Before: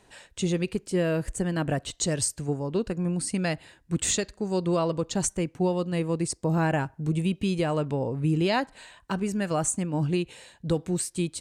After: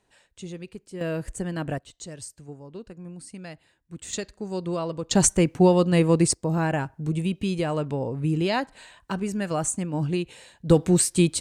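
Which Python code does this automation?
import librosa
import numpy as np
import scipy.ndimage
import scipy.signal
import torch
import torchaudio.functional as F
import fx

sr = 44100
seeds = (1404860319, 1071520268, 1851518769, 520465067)

y = fx.gain(x, sr, db=fx.steps((0.0, -11.0), (1.01, -2.5), (1.78, -12.5), (4.13, -3.5), (5.11, 8.0), (6.34, 0.0), (10.7, 8.5)))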